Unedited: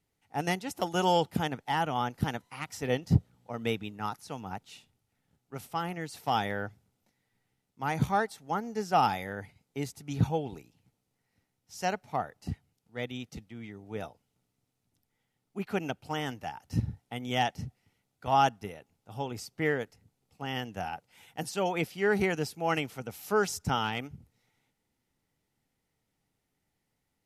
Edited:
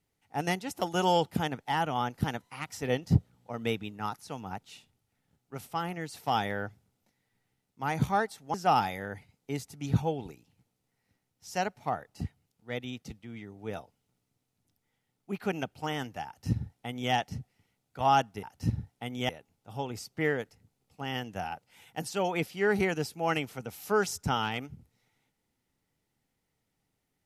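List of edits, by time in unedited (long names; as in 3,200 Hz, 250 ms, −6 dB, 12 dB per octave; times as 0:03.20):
0:08.54–0:08.81: remove
0:16.53–0:17.39: duplicate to 0:18.70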